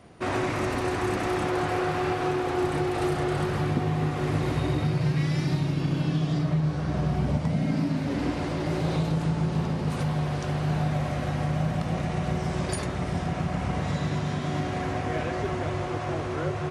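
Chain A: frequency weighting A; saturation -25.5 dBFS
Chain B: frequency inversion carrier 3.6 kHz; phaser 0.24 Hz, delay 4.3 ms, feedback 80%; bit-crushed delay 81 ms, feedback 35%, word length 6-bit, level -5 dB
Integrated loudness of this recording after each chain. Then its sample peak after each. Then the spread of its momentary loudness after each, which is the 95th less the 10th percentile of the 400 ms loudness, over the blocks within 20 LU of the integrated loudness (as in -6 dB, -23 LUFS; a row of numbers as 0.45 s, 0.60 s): -34.5 LUFS, -18.0 LUFS; -25.5 dBFS, -4.5 dBFS; 5 LU, 5 LU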